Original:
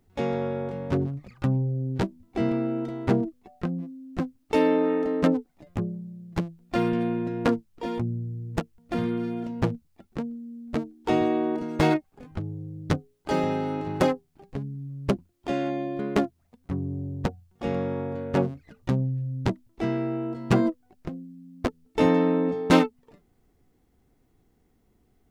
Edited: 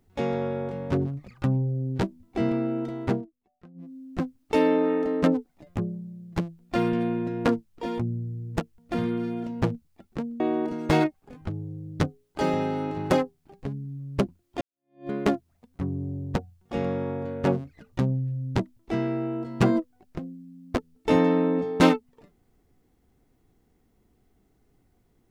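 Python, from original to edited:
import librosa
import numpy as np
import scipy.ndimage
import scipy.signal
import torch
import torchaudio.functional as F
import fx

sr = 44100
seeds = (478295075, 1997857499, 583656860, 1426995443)

y = fx.edit(x, sr, fx.fade_down_up(start_s=3.04, length_s=0.93, db=-21.5, fade_s=0.23),
    fx.cut(start_s=10.4, length_s=0.9),
    fx.fade_in_span(start_s=15.51, length_s=0.48, curve='exp'), tone=tone)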